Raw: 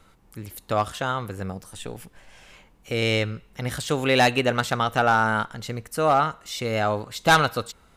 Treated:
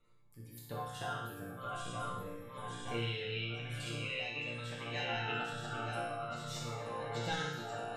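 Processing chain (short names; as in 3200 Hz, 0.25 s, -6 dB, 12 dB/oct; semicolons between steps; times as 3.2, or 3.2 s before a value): regenerating reverse delay 0.461 s, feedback 72%, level -3.5 dB; recorder AGC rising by 6.5 dB/s; spectral gate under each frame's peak -30 dB strong; 2.94–5.32 bell 2600 Hz +13 dB 0.55 oct; compressor, threshold -18 dBFS, peak gain reduction 9 dB; random-step tremolo; resonator bank A#2 major, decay 0.84 s; flutter echo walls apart 10.6 m, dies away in 0.46 s; cascading phaser falling 0.46 Hz; gain +7.5 dB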